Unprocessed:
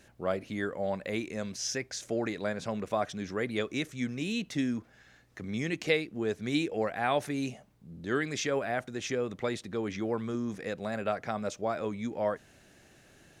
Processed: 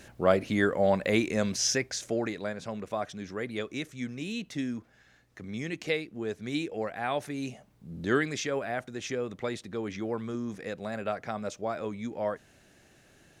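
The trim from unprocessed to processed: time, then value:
1.56 s +8 dB
2.56 s -2.5 dB
7.38 s -2.5 dB
8.03 s +6.5 dB
8.43 s -1 dB

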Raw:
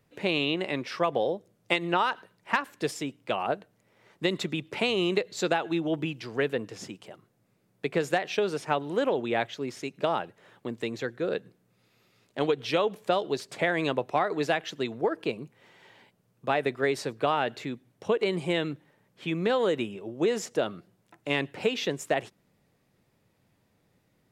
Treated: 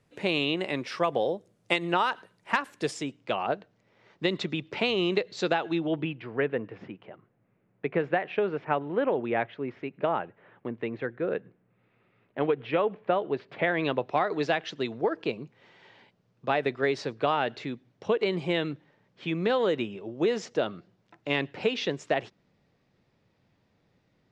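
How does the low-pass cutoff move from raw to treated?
low-pass 24 dB/octave
2.73 s 11 kHz
3.40 s 5.7 kHz
5.72 s 5.7 kHz
6.26 s 2.5 kHz
13.32 s 2.5 kHz
14.29 s 5.7 kHz

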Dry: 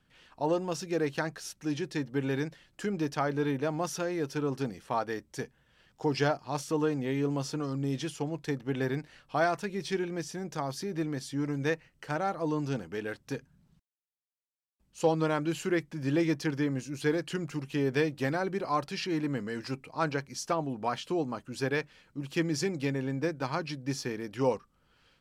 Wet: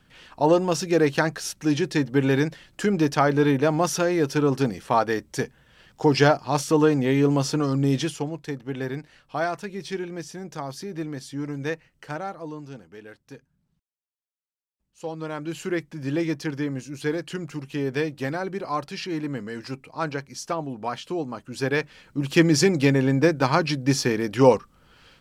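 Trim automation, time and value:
7.98 s +10 dB
8.42 s +1 dB
12.09 s +1 dB
12.67 s -7.5 dB
15.04 s -7.5 dB
15.65 s +2 dB
21.31 s +2 dB
22.29 s +12 dB

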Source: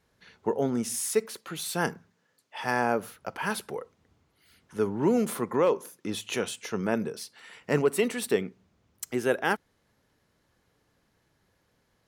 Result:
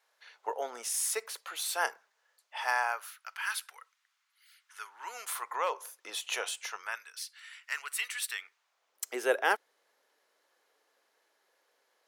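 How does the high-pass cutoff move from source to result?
high-pass 24 dB/octave
2.59 s 620 Hz
3.20 s 1.3 kHz
4.80 s 1.3 kHz
5.93 s 620 Hz
6.56 s 620 Hz
7.05 s 1.4 kHz
8.34 s 1.4 kHz
9.05 s 440 Hz

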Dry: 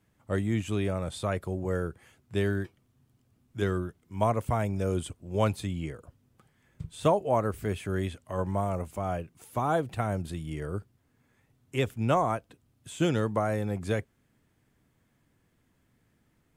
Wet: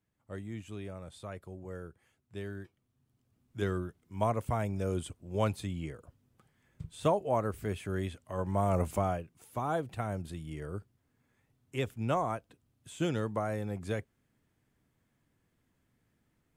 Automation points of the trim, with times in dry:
2.50 s -13 dB
3.58 s -4 dB
8.43 s -4 dB
8.92 s +6.5 dB
9.22 s -5.5 dB

